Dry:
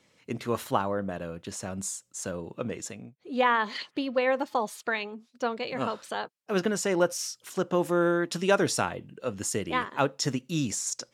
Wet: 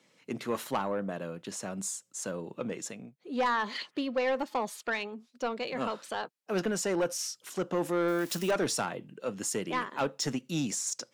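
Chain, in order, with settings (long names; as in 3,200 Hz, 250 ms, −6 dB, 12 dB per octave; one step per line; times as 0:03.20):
0:08.08–0:08.51: spike at every zero crossing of −30.5 dBFS
high-pass filter 140 Hz 24 dB per octave
soft clipping −21 dBFS, distortion −12 dB
level −1 dB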